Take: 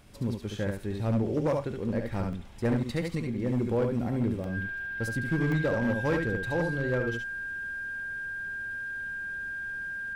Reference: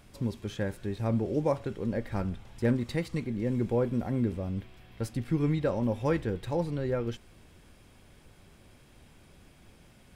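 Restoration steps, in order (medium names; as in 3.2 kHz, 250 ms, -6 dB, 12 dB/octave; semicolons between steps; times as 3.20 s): clip repair -21 dBFS; band-stop 1.6 kHz, Q 30; interpolate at 2.33/4.44/5.52 s, 1.2 ms; inverse comb 71 ms -4.5 dB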